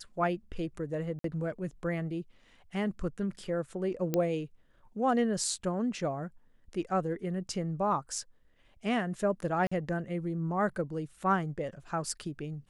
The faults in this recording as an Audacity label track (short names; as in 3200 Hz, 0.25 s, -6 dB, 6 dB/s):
1.190000	1.240000	gap 53 ms
4.140000	4.140000	pop -15 dBFS
9.670000	9.710000	gap 45 ms